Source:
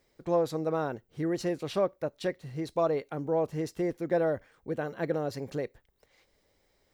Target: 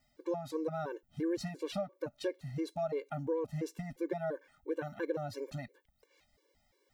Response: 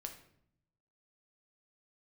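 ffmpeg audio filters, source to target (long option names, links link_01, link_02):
-af "acompressor=threshold=-29dB:ratio=6,afftfilt=real='re*gt(sin(2*PI*2.9*pts/sr)*(1-2*mod(floor(b*sr/1024/300),2)),0)':imag='im*gt(sin(2*PI*2.9*pts/sr)*(1-2*mod(floor(b*sr/1024/300),2)),0)':win_size=1024:overlap=0.75"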